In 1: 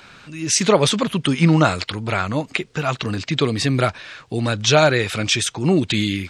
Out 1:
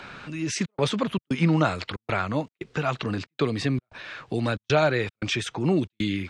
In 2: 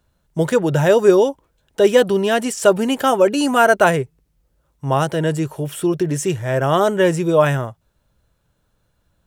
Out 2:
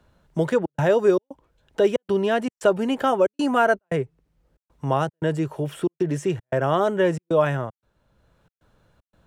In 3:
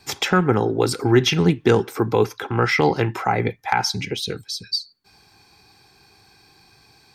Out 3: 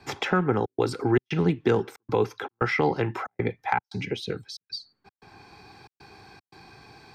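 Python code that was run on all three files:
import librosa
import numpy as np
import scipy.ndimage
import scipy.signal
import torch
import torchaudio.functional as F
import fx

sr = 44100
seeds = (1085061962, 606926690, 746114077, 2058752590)

y = fx.lowpass(x, sr, hz=2400.0, slope=6)
y = fx.low_shelf(y, sr, hz=150.0, db=-3.5)
y = fx.step_gate(y, sr, bpm=115, pattern='xxxxx.xxx.', floor_db=-60.0, edge_ms=4.5)
y = fx.band_squash(y, sr, depth_pct=40)
y = F.gain(torch.from_numpy(y), -4.0).numpy()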